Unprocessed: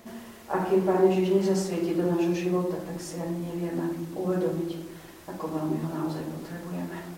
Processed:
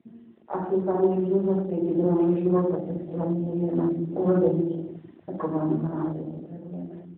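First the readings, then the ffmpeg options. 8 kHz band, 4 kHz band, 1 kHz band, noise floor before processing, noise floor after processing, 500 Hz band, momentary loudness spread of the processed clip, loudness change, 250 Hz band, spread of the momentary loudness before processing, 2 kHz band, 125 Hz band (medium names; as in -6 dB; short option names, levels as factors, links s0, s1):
under -35 dB, under -15 dB, -0.5 dB, -47 dBFS, -51 dBFS, +1.5 dB, 15 LU, +2.5 dB, +3.0 dB, 14 LU, no reading, +3.5 dB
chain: -af "afwtdn=0.0178,dynaudnorm=f=320:g=11:m=2.51,volume=0.794" -ar 8000 -c:a libopencore_amrnb -b:a 12200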